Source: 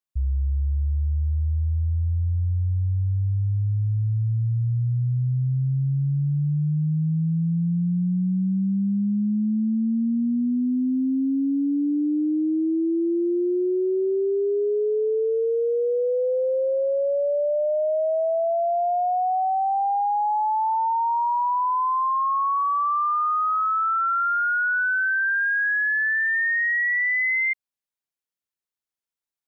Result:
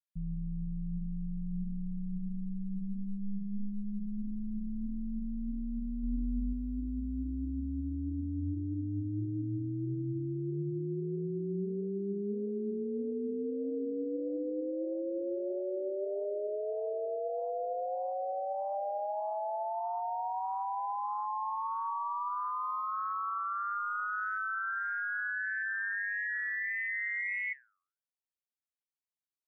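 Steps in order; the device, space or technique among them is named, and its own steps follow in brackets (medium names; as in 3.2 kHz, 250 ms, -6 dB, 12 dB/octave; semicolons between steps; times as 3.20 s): alien voice (ring modulator 100 Hz; flange 1.6 Hz, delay 6.1 ms, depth 5.6 ms, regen +87%); 6.03–6.53 s: bass shelf 180 Hz +5 dB; trim -5 dB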